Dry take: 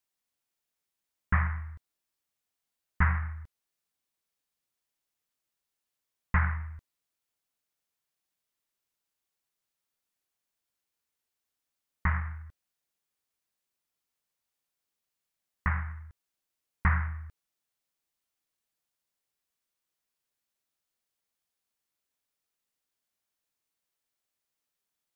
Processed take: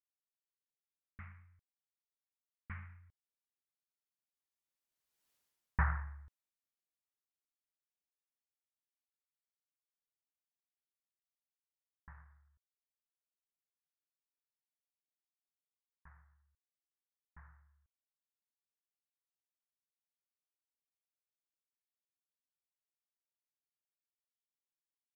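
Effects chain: Doppler pass-by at 5.31 s, 35 m/s, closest 4.7 m; trim +5 dB

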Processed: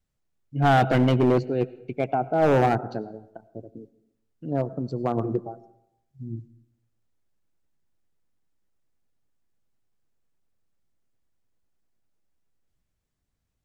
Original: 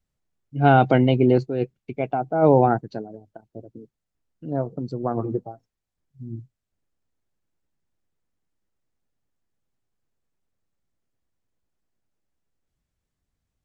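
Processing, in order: reverberation RT60 0.80 s, pre-delay 55 ms, DRR 17.5 dB; hard clipper -14.5 dBFS, distortion -9 dB

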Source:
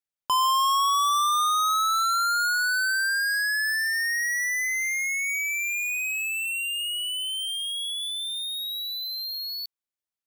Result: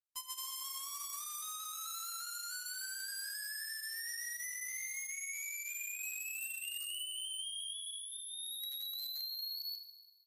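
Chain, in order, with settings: one-sided wavefolder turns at -26.5 dBFS; amplifier tone stack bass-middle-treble 5-5-5; band-stop 3.5 kHz, Q 6; granulator 113 ms, grains 23 per s, spray 152 ms, pitch spread up and down by 0 st; in parallel at -6 dB: bit crusher 6-bit; on the sum: plate-style reverb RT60 1.6 s, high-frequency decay 0.9×, DRR 7.5 dB; compression 12:1, threshold -38 dBFS, peak gain reduction 9 dB; tilt EQ +3 dB/octave; speakerphone echo 110 ms, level -23 dB; trim -5 dB; MP3 56 kbps 44.1 kHz

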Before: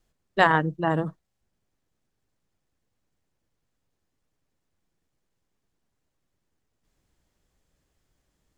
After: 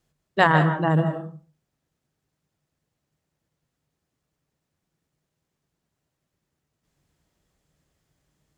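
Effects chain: high-pass 50 Hz; peaking EQ 150 Hz +10.5 dB 0.21 oct; reverberation RT60 0.40 s, pre-delay 120 ms, DRR 7.5 dB; trim +1 dB

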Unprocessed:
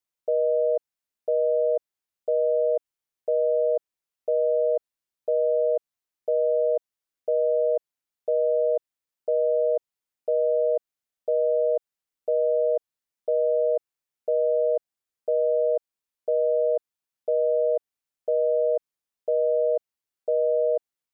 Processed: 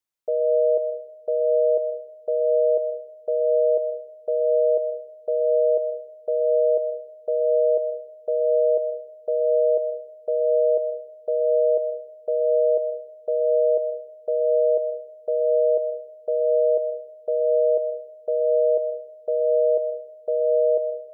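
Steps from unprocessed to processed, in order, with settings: algorithmic reverb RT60 0.86 s, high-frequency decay 0.3×, pre-delay 80 ms, DRR 11 dB

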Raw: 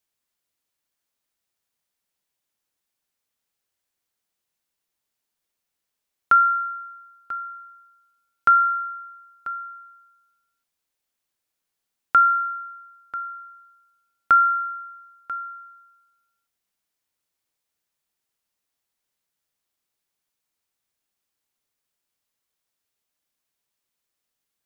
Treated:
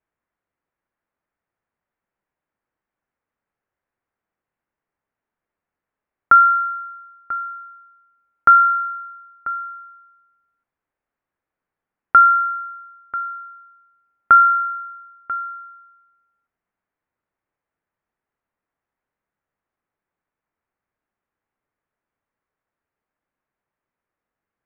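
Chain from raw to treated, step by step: low-pass 1.9 kHz 24 dB/octave; trim +5.5 dB

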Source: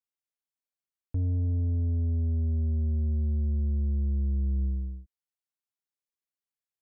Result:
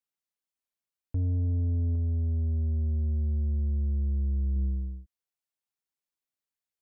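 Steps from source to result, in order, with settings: 1.95–4.56 s: dynamic bell 240 Hz, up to -3 dB, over -44 dBFS, Q 0.79

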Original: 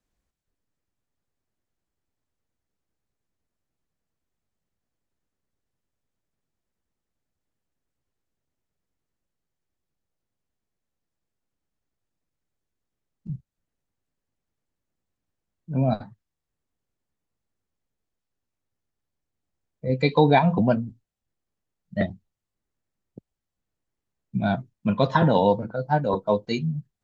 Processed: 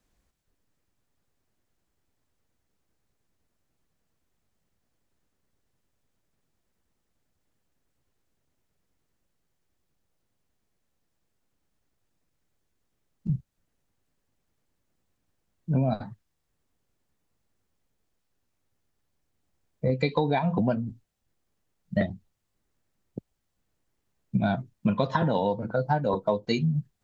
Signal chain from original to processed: compression 12:1, threshold -28 dBFS, peak gain reduction 16.5 dB; trim +7 dB

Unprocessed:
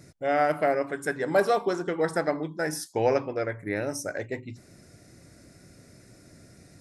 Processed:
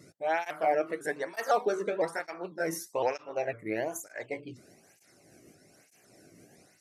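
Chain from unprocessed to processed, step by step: sawtooth pitch modulation +3 st, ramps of 504 ms; cancelling through-zero flanger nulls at 1.1 Hz, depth 1.3 ms

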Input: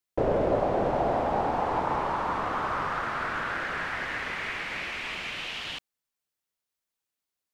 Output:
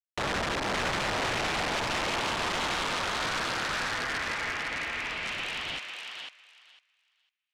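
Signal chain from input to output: compression 4:1, threshold -26 dBFS, peak gain reduction 6 dB; crossover distortion -48 dBFS; 3.94–5.23 s: comb of notches 190 Hz; integer overflow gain 27 dB; distance through air 86 m; thinning echo 502 ms, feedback 17%, high-pass 900 Hz, level -4 dB; trim +3.5 dB

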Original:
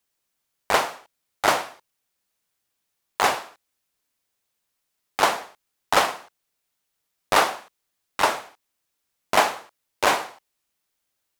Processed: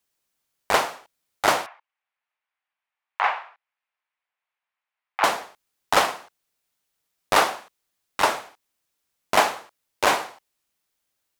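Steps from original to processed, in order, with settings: 1.66–5.24 s: Chebyshev band-pass 820–2400 Hz, order 2

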